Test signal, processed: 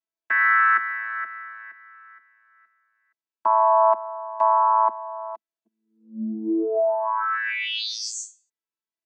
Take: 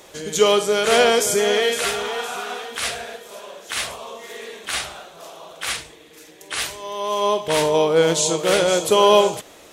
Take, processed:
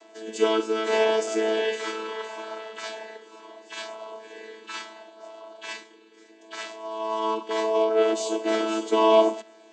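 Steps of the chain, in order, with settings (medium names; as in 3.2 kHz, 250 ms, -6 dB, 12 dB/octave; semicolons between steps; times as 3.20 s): vocoder on a held chord bare fifth, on A3; Bessel high-pass 480 Hz, order 2; trim -1.5 dB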